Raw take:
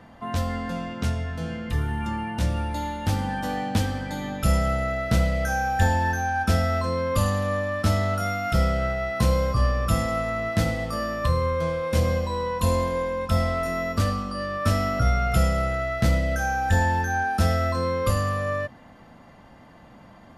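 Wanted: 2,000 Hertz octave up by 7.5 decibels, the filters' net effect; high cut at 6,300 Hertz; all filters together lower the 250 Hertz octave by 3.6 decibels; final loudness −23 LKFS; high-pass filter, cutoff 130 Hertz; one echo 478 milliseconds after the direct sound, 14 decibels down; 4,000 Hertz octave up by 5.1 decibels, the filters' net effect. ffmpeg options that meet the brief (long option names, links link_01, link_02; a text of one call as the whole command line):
ffmpeg -i in.wav -af "highpass=130,lowpass=6300,equalizer=frequency=250:width_type=o:gain=-4,equalizer=frequency=2000:width_type=o:gain=8,equalizer=frequency=4000:width_type=o:gain=5,aecho=1:1:478:0.2,volume=1dB" out.wav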